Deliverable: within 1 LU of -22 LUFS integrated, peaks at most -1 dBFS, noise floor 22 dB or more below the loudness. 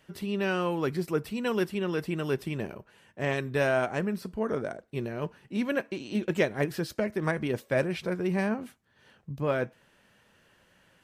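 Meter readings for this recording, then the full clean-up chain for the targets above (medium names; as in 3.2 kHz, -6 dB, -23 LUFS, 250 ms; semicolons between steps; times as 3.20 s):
loudness -30.5 LUFS; peak level -12.0 dBFS; loudness target -22.0 LUFS
-> trim +8.5 dB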